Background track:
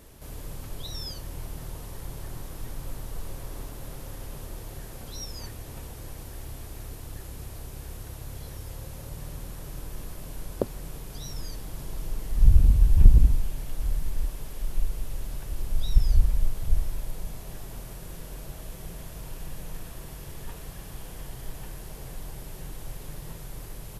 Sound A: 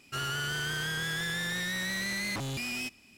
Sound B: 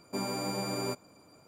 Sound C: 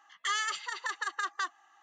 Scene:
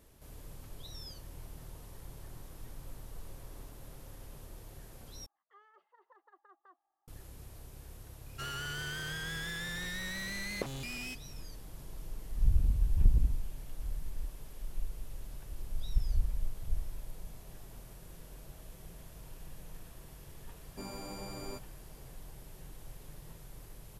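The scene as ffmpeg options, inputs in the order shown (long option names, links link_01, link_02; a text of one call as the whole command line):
ffmpeg -i bed.wav -i cue0.wav -i cue1.wav -i cue2.wav -filter_complex "[0:a]volume=-10.5dB[link_01];[3:a]asuperpass=centerf=450:order=4:qfactor=0.93[link_02];[link_01]asplit=2[link_03][link_04];[link_03]atrim=end=5.264[link_05];[link_02]atrim=end=1.82,asetpts=PTS-STARTPTS,volume=-14dB[link_06];[link_04]atrim=start=7.076[link_07];[1:a]atrim=end=3.17,asetpts=PTS-STARTPTS,volume=-6.5dB,afade=type=in:duration=0.004:curve=hsin,afade=type=out:start_time=3.166:duration=0.004:curve=hsin,adelay=364266S[link_08];[2:a]atrim=end=1.47,asetpts=PTS-STARTPTS,volume=-10.5dB,afade=type=in:duration=0.004:curve=hsin,afade=type=out:start_time=1.466:duration=0.004:curve=hsin,adelay=20640[link_09];[link_05][link_06]acrossfade=duration=0.004:curve1=hsin:curve2=hsin[link_10];[link_10][link_07]acrossfade=duration=0.004:curve1=hsin:curve2=hsin[link_11];[link_11][link_08][link_09]amix=inputs=3:normalize=0" out.wav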